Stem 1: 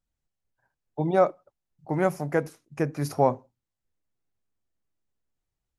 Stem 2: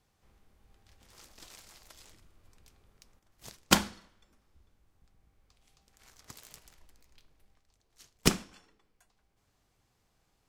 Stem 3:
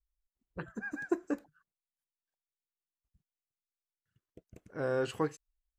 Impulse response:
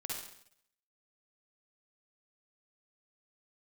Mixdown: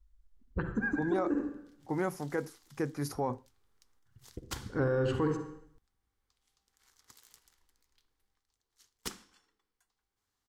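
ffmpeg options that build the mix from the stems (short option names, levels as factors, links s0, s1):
-filter_complex "[0:a]volume=0.668,asplit=2[s0][s1];[1:a]adelay=800,volume=0.447[s2];[2:a]aemphasis=mode=reproduction:type=riaa,acontrast=73,volume=1.12,asplit=2[s3][s4];[s4]volume=0.398[s5];[s1]apad=whole_len=254992[s6];[s3][s6]sidechaincompress=threshold=0.0141:ratio=8:attack=16:release=703[s7];[s2][s7]amix=inputs=2:normalize=0,lowshelf=f=390:g=-8.5,alimiter=limit=0.0794:level=0:latency=1:release=171,volume=1[s8];[3:a]atrim=start_sample=2205[s9];[s5][s9]afir=irnorm=-1:irlink=0[s10];[s0][s8][s10]amix=inputs=3:normalize=0,equalizer=f=160:t=o:w=0.33:g=-8,equalizer=f=630:t=o:w=0.33:g=-12,equalizer=f=2500:t=o:w=0.33:g=-6,alimiter=limit=0.0794:level=0:latency=1:release=13"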